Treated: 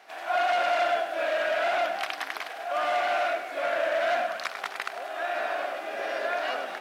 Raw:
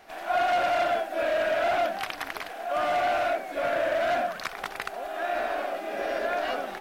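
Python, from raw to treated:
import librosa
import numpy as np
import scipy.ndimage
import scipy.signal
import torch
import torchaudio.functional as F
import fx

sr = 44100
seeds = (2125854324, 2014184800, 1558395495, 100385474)

p1 = fx.weighting(x, sr, curve='A')
y = p1 + fx.echo_feedback(p1, sr, ms=102, feedback_pct=60, wet_db=-11.5, dry=0)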